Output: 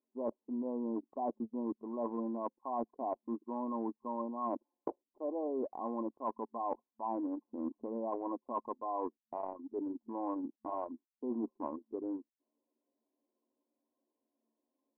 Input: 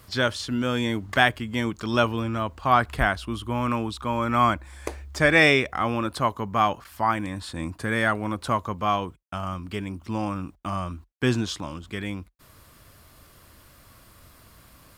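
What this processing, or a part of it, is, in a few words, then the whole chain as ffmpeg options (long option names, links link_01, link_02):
compression on the reversed sound: -af "afftfilt=real='re*between(b*sr/4096,220,1100)':imag='im*between(b*sr/4096,220,1100)':win_size=4096:overlap=0.75,anlmdn=6.31,areverse,acompressor=threshold=-35dB:ratio=16,areverse,volume=1.5dB"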